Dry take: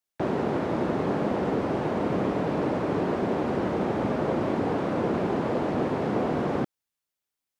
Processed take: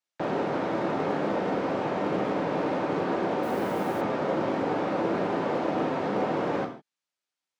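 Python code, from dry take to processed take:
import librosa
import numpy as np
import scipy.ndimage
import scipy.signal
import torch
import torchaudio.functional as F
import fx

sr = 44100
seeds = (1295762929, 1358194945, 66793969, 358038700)

y = scipy.signal.sosfilt(scipy.signal.butter(2, 6500.0, 'lowpass', fs=sr, output='sos'), x)
y = np.clip(y, -10.0 ** (-19.0 / 20.0), 10.0 ** (-19.0 / 20.0))
y = fx.rev_gated(y, sr, seeds[0], gate_ms=180, shape='falling', drr_db=2.5)
y = fx.quant_dither(y, sr, seeds[1], bits=8, dither='none', at=(3.42, 4.0), fade=0.02)
y = fx.highpass(y, sr, hz=360.0, slope=6)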